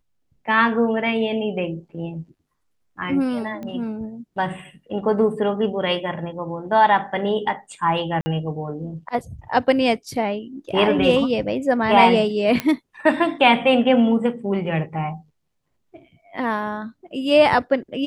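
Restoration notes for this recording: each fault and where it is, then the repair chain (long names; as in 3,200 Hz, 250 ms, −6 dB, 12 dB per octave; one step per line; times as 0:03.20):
0:03.63: click −22 dBFS
0:08.21–0:08.26: drop-out 50 ms
0:12.60: click −8 dBFS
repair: click removal
repair the gap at 0:08.21, 50 ms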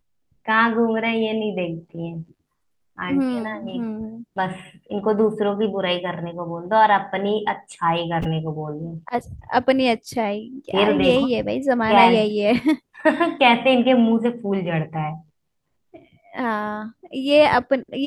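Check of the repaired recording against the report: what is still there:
none of them is left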